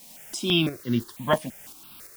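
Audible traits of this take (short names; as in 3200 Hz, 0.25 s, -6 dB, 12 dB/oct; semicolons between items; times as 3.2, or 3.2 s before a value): a quantiser's noise floor 8-bit, dither triangular; tremolo saw up 2.9 Hz, depth 50%; notches that jump at a steady rate 6 Hz 380–2500 Hz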